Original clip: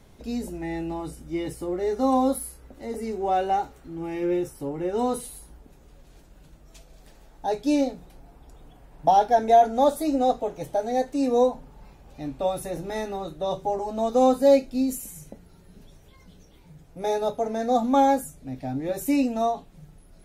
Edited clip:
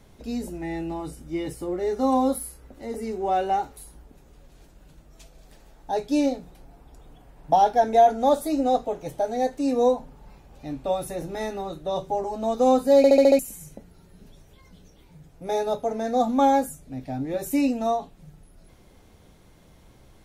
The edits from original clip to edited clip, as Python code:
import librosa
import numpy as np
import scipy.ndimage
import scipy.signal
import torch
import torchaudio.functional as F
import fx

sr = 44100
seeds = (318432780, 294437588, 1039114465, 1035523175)

y = fx.edit(x, sr, fx.cut(start_s=3.77, length_s=1.55),
    fx.stutter_over(start_s=14.52, slice_s=0.07, count=6), tone=tone)